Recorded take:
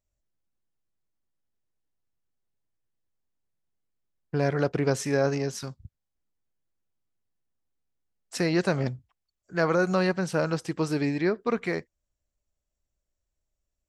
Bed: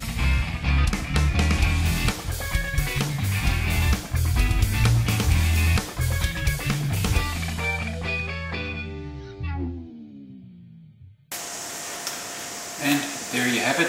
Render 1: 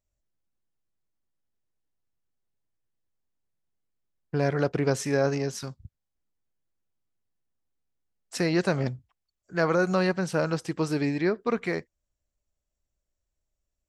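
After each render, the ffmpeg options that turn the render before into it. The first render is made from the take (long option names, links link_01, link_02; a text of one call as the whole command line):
ffmpeg -i in.wav -af anull out.wav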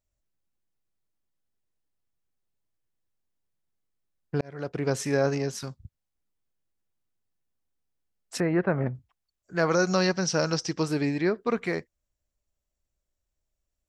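ffmpeg -i in.wav -filter_complex "[0:a]asettb=1/sr,asplit=3[link_01][link_02][link_03];[link_01]atrim=end=8.404[link_04];[link_02]atrim=start=8.4:end=8.95,asetpts=PTS-STARTPTS,afade=type=in:duration=0.004:curve=qsin,afade=type=out:start_time=0.546:duration=0.004:curve=qsin,lowpass=frequency=2000:width=0.5412,lowpass=frequency=2000:width=1.3066[link_05];[link_03]atrim=start=8.946[link_06];[link_04][link_05]acrossfade=duration=0.004:curve1=hsin:curve2=qsin[link_07];[link_07][link_06]acrossfade=duration=0.004:curve1=qsin:curve2=hsin,asettb=1/sr,asplit=3[link_08][link_09][link_10];[link_08]atrim=end=9.714[link_11];[link_09]atrim=start=9.71:end=10.83,asetpts=PTS-STARTPTS,afade=type=in:duration=0.004:curve=qsin,afade=type=out:start_time=1.116:duration=0.004:curve=qsin,lowpass=frequency=5600:width_type=q:width=6.1[link_12];[link_10]atrim=start=10.826[link_13];[link_11][link_12]acrossfade=duration=0.004:curve1=hsin:curve2=qsin[link_14];[link_14][link_13]acrossfade=duration=0.004:curve1=qsin:curve2=hsin,asplit=2[link_15][link_16];[link_15]atrim=end=4.41,asetpts=PTS-STARTPTS,afade=type=out:start_time=4.406:duration=0.004:curve=hsin[link_17];[link_16]atrim=start=4.41,asetpts=PTS-STARTPTS,afade=type=in:duration=0.6[link_18];[link_17][link_18]concat=n=2:v=0:a=1" out.wav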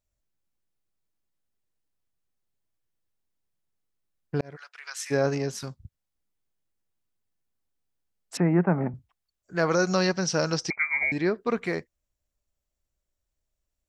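ffmpeg -i in.wav -filter_complex "[0:a]asplit=3[link_01][link_02][link_03];[link_01]afade=type=out:start_time=4.55:duration=0.02[link_04];[link_02]highpass=frequency=1300:width=0.5412,highpass=frequency=1300:width=1.3066,afade=type=in:start_time=4.55:duration=0.02,afade=type=out:start_time=5.1:duration=0.02[link_05];[link_03]afade=type=in:start_time=5.1:duration=0.02[link_06];[link_04][link_05][link_06]amix=inputs=3:normalize=0,asettb=1/sr,asplit=3[link_07][link_08][link_09];[link_07]atrim=end=8.374[link_10];[link_08]atrim=start=8.37:end=8.94,asetpts=PTS-STARTPTS,afade=type=in:duration=0.004:curve=qsin,afade=type=out:start_time=0.566:duration=0.004:curve=qsin,highpass=160,equalizer=frequency=170:width_type=q:width=4:gain=10,equalizer=frequency=290:width_type=q:width=4:gain=4,equalizer=frequency=510:width_type=q:width=4:gain=-4,equalizer=frequency=840:width_type=q:width=4:gain=7,equalizer=frequency=1700:width_type=q:width=4:gain=-4,lowpass=frequency=2500:width=0.5412,lowpass=frequency=2500:width=1.3066[link_11];[link_09]atrim=start=8.936[link_12];[link_10][link_11]acrossfade=duration=0.004:curve1=hsin:curve2=qsin[link_13];[link_13][link_12]acrossfade=duration=0.004:curve1=qsin:curve2=hsin,asettb=1/sr,asplit=3[link_14][link_15][link_16];[link_14]atrim=end=10.704[link_17];[link_15]atrim=start=10.7:end=11.12,asetpts=PTS-STARTPTS,afade=type=in:duration=0.004:curve=qsin,afade=type=out:start_time=0.416:duration=0.004:curve=qsin,lowpass=frequency=2100:width_type=q:width=0.5098,lowpass=frequency=2100:width_type=q:width=0.6013,lowpass=frequency=2100:width_type=q:width=0.9,lowpass=frequency=2100:width_type=q:width=2.563,afreqshift=-2500[link_18];[link_16]atrim=start=11.116[link_19];[link_17][link_18]acrossfade=duration=0.004:curve1=hsin:curve2=qsin[link_20];[link_20][link_19]acrossfade=duration=0.004:curve1=qsin:curve2=hsin" out.wav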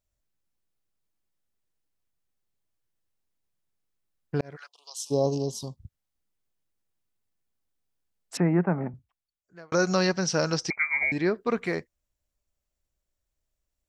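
ffmpeg -i in.wav -filter_complex "[0:a]asplit=3[link_01][link_02][link_03];[link_01]afade=type=out:start_time=4.66:duration=0.02[link_04];[link_02]asuperstop=centerf=1800:order=12:qfactor=0.93,afade=type=in:start_time=4.66:duration=0.02,afade=type=out:start_time=5.76:duration=0.02[link_05];[link_03]afade=type=in:start_time=5.76:duration=0.02[link_06];[link_04][link_05][link_06]amix=inputs=3:normalize=0,asplit=2[link_07][link_08];[link_07]atrim=end=9.72,asetpts=PTS-STARTPTS,afade=type=out:start_time=8.38:duration=1.34[link_09];[link_08]atrim=start=9.72,asetpts=PTS-STARTPTS,afade=type=in:duration=0.004:curve=hsin[link_10];[link_09][link_10]concat=n=2:v=0:a=1" out.wav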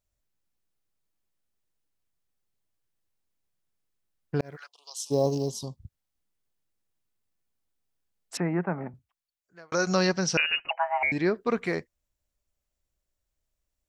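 ffmpeg -i in.wav -filter_complex "[0:a]asettb=1/sr,asplit=3[link_01][link_02][link_03];[link_01]atrim=end=4.404[link_04];[link_02]atrim=start=4.4:end=5.56,asetpts=PTS-STARTPTS,afade=type=in:duration=0.004:curve=qsin,afade=type=out:start_time=1.156:duration=0.004:curve=qsin,acrusher=bits=9:mode=log:mix=0:aa=0.000001[link_05];[link_03]atrim=start=5.556[link_06];[link_04][link_05]acrossfade=duration=0.004:curve1=hsin:curve2=qsin[link_07];[link_07][link_06]acrossfade=duration=0.004:curve1=qsin:curve2=hsin,asettb=1/sr,asplit=3[link_08][link_09][link_10];[link_08]atrim=end=8.354[link_11];[link_09]atrim=start=8.35:end=9.87,asetpts=PTS-STARTPTS,afade=type=in:duration=0.004:curve=qsin,afade=type=out:start_time=1.516:duration=0.004:curve=qsin,lowshelf=frequency=490:gain=-6.5[link_12];[link_10]atrim=start=9.866[link_13];[link_11][link_12]acrossfade=duration=0.004:curve1=hsin:curve2=qsin[link_14];[link_14][link_13]acrossfade=duration=0.004:curve1=qsin:curve2=hsin,asettb=1/sr,asplit=3[link_15][link_16][link_17];[link_15]atrim=end=10.374[link_18];[link_16]atrim=start=10.37:end=11.03,asetpts=PTS-STARTPTS,afade=type=in:duration=0.004:curve=qsin,afade=type=out:start_time=0.656:duration=0.004:curve=qsin,lowpass=frequency=2600:width_type=q:width=0.5098,lowpass=frequency=2600:width_type=q:width=0.6013,lowpass=frequency=2600:width_type=q:width=0.9,lowpass=frequency=2600:width_type=q:width=2.563,afreqshift=-3000[link_19];[link_17]atrim=start=11.026[link_20];[link_18][link_19]acrossfade=duration=0.004:curve1=hsin:curve2=qsin[link_21];[link_21][link_20]acrossfade=duration=0.004:curve1=qsin:curve2=hsin" out.wav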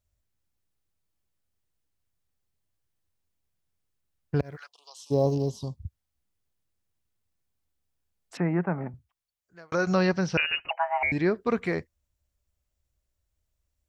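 ffmpeg -i in.wav -filter_complex "[0:a]acrossover=split=3700[link_01][link_02];[link_02]acompressor=threshold=-50dB:ratio=4:attack=1:release=60[link_03];[link_01][link_03]amix=inputs=2:normalize=0,equalizer=frequency=75:width=1:gain=10.5" out.wav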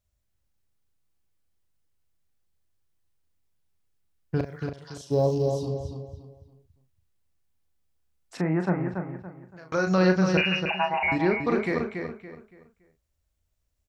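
ffmpeg -i in.wav -filter_complex "[0:a]asplit=2[link_01][link_02];[link_02]adelay=38,volume=-7dB[link_03];[link_01][link_03]amix=inputs=2:normalize=0,asplit=2[link_04][link_05];[link_05]adelay=283,lowpass=frequency=4200:poles=1,volume=-5.5dB,asplit=2[link_06][link_07];[link_07]adelay=283,lowpass=frequency=4200:poles=1,volume=0.32,asplit=2[link_08][link_09];[link_09]adelay=283,lowpass=frequency=4200:poles=1,volume=0.32,asplit=2[link_10][link_11];[link_11]adelay=283,lowpass=frequency=4200:poles=1,volume=0.32[link_12];[link_04][link_06][link_08][link_10][link_12]amix=inputs=5:normalize=0" out.wav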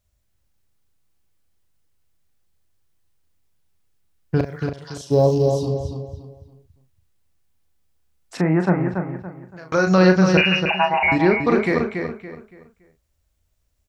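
ffmpeg -i in.wav -af "volume=7dB,alimiter=limit=-3dB:level=0:latency=1" out.wav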